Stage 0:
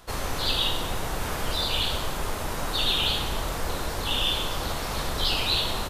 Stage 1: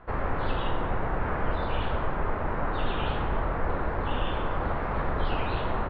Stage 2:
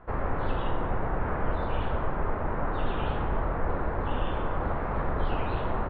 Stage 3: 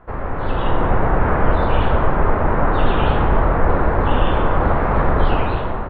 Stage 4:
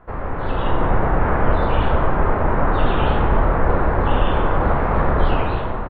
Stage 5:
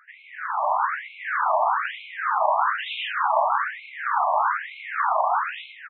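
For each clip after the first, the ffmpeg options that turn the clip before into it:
-af "lowpass=f=1900:w=0.5412,lowpass=f=1900:w=1.3066,volume=1.26"
-af "highshelf=f=2800:g=-11"
-af "dynaudnorm=f=170:g=7:m=2.82,volume=1.58"
-filter_complex "[0:a]asplit=2[s0][s1];[s1]adelay=30,volume=0.251[s2];[s0][s2]amix=inputs=2:normalize=0,volume=0.841"
-af "afftfilt=real='re*between(b*sr/1024,820*pow(3000/820,0.5+0.5*sin(2*PI*1.1*pts/sr))/1.41,820*pow(3000/820,0.5+0.5*sin(2*PI*1.1*pts/sr))*1.41)':imag='im*between(b*sr/1024,820*pow(3000/820,0.5+0.5*sin(2*PI*1.1*pts/sr))/1.41,820*pow(3000/820,0.5+0.5*sin(2*PI*1.1*pts/sr))*1.41)':win_size=1024:overlap=0.75,volume=1.68"

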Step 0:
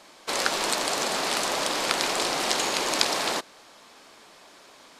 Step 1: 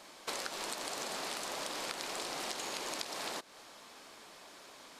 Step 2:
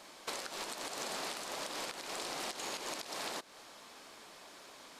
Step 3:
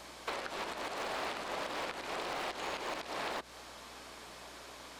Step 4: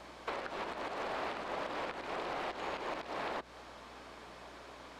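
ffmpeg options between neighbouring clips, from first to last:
-af "highshelf=f=12000:g=6,acompressor=threshold=0.0224:ratio=12,volume=0.708"
-af "alimiter=level_in=1.33:limit=0.0631:level=0:latency=1:release=124,volume=0.75"
-filter_complex "[0:a]acrossover=split=3300[s0][s1];[s1]acompressor=threshold=0.00141:ratio=4:attack=1:release=60[s2];[s0][s2]amix=inputs=2:normalize=0,acrossover=split=300|4000[s3][s4][s5];[s3]aeval=exprs='(mod(398*val(0)+1,2)-1)/398':c=same[s6];[s6][s4][s5]amix=inputs=3:normalize=0,aeval=exprs='val(0)+0.000398*(sin(2*PI*60*n/s)+sin(2*PI*2*60*n/s)/2+sin(2*PI*3*60*n/s)/3+sin(2*PI*4*60*n/s)/4+sin(2*PI*5*60*n/s)/5)':c=same,volume=1.68"
-af "lowpass=f=2000:p=1,volume=1.12"

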